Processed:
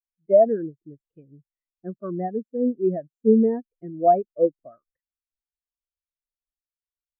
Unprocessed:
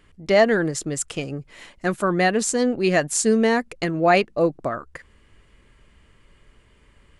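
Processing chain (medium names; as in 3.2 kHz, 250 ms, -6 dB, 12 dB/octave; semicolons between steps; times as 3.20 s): de-esser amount 75%; treble shelf 2.2 kHz -8.5 dB; spectral contrast expander 2.5:1; trim +1 dB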